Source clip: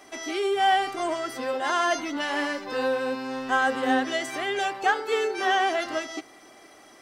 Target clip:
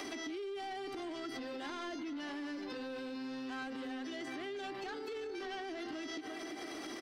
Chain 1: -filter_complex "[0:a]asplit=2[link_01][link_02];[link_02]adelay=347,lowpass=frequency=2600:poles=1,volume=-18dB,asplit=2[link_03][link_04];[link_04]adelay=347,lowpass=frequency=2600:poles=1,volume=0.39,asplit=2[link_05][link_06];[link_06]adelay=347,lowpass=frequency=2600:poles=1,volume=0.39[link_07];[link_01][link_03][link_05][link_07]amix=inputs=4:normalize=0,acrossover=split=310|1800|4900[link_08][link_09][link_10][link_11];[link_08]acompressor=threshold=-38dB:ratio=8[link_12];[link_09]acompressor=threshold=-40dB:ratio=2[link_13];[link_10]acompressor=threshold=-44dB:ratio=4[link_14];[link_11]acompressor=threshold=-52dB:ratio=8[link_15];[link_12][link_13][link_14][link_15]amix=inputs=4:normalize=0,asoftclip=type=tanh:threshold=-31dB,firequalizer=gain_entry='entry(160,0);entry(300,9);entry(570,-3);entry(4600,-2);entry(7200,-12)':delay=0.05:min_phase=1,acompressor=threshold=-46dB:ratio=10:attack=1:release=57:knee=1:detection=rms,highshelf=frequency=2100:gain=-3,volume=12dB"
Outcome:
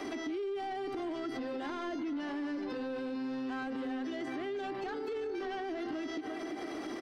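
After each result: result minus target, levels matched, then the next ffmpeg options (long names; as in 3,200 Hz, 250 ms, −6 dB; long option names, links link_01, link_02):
4,000 Hz band −6.5 dB; downward compressor: peak gain reduction −6 dB
-filter_complex "[0:a]asplit=2[link_01][link_02];[link_02]adelay=347,lowpass=frequency=2600:poles=1,volume=-18dB,asplit=2[link_03][link_04];[link_04]adelay=347,lowpass=frequency=2600:poles=1,volume=0.39,asplit=2[link_05][link_06];[link_06]adelay=347,lowpass=frequency=2600:poles=1,volume=0.39[link_07];[link_01][link_03][link_05][link_07]amix=inputs=4:normalize=0,acrossover=split=310|1800|4900[link_08][link_09][link_10][link_11];[link_08]acompressor=threshold=-38dB:ratio=8[link_12];[link_09]acompressor=threshold=-40dB:ratio=2[link_13];[link_10]acompressor=threshold=-44dB:ratio=4[link_14];[link_11]acompressor=threshold=-52dB:ratio=8[link_15];[link_12][link_13][link_14][link_15]amix=inputs=4:normalize=0,asoftclip=type=tanh:threshold=-31dB,firequalizer=gain_entry='entry(160,0);entry(300,9);entry(570,-3);entry(4600,-2);entry(7200,-12)':delay=0.05:min_phase=1,acompressor=threshold=-46dB:ratio=10:attack=1:release=57:knee=1:detection=rms,highshelf=frequency=2100:gain=8,volume=12dB"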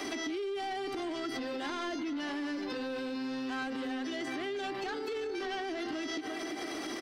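downward compressor: peak gain reduction −6 dB
-filter_complex "[0:a]asplit=2[link_01][link_02];[link_02]adelay=347,lowpass=frequency=2600:poles=1,volume=-18dB,asplit=2[link_03][link_04];[link_04]adelay=347,lowpass=frequency=2600:poles=1,volume=0.39,asplit=2[link_05][link_06];[link_06]adelay=347,lowpass=frequency=2600:poles=1,volume=0.39[link_07];[link_01][link_03][link_05][link_07]amix=inputs=4:normalize=0,acrossover=split=310|1800|4900[link_08][link_09][link_10][link_11];[link_08]acompressor=threshold=-38dB:ratio=8[link_12];[link_09]acompressor=threshold=-40dB:ratio=2[link_13];[link_10]acompressor=threshold=-44dB:ratio=4[link_14];[link_11]acompressor=threshold=-52dB:ratio=8[link_15];[link_12][link_13][link_14][link_15]amix=inputs=4:normalize=0,asoftclip=type=tanh:threshold=-31dB,firequalizer=gain_entry='entry(160,0);entry(300,9);entry(570,-3);entry(4600,-2);entry(7200,-12)':delay=0.05:min_phase=1,acompressor=threshold=-52.5dB:ratio=10:attack=1:release=57:knee=1:detection=rms,highshelf=frequency=2100:gain=8,volume=12dB"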